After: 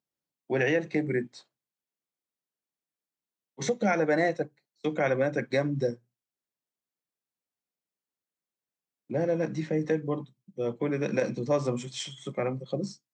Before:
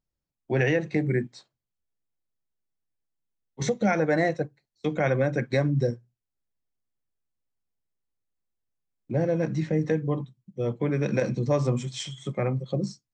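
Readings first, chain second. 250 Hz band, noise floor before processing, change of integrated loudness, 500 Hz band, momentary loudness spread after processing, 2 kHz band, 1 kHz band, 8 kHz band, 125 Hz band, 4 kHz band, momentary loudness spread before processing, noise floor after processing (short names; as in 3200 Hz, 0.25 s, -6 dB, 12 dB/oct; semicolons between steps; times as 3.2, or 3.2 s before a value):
-3.0 dB, under -85 dBFS, -2.5 dB, -1.0 dB, 10 LU, -1.0 dB, -1.0 dB, -1.0 dB, -8.0 dB, -1.0 dB, 9 LU, under -85 dBFS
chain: HPF 200 Hz 12 dB/oct; gain -1 dB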